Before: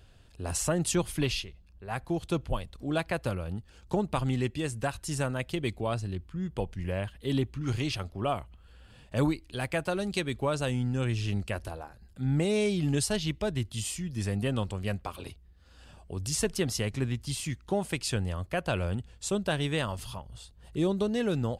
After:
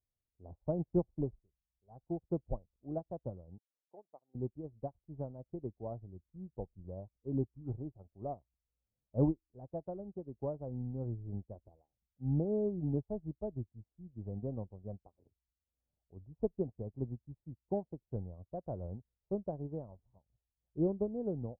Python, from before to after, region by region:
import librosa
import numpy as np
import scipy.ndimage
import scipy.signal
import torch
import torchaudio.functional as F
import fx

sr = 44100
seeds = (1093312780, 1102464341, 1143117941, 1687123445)

y = fx.chain(x, sr, fx.highpass(hz=620.0, slope=12),
    fx.peak_eq(hz=930.0, db=-2.5, octaves=0.43), at=(3.58, 4.35))
y = fx.chain(y, sr, fx.block_float(bits=7),
    fx.peak_eq(hz=2800.0, db=7.0, octaves=2.0), at=(5.53, 6.45))
y = scipy.signal.sosfilt(scipy.signal.butter(6, 790.0, 'lowpass', fs=sr, output='sos'), y)
y = fx.upward_expand(y, sr, threshold_db=-47.0, expansion=2.5)
y = y * 10.0 ** (-1.0 / 20.0)